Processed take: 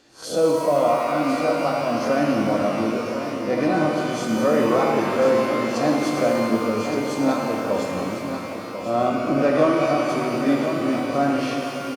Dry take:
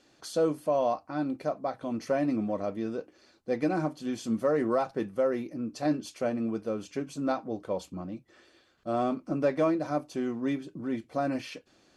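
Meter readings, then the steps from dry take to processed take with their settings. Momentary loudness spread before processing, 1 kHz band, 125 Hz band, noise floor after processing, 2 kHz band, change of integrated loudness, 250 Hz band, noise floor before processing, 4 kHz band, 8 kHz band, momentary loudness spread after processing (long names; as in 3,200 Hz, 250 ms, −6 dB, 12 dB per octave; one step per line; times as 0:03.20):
9 LU, +11.5 dB, +8.5 dB, −31 dBFS, +13.5 dB, +9.5 dB, +9.0 dB, −64 dBFS, +13.5 dB, +12.0 dB, 7 LU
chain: peak hold with a rise ahead of every peak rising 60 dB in 0.31 s
on a send: single-tap delay 1,045 ms −9 dB
on the sum: reverb with rising layers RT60 3 s, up +12 semitones, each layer −8 dB, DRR −0.5 dB
level +5 dB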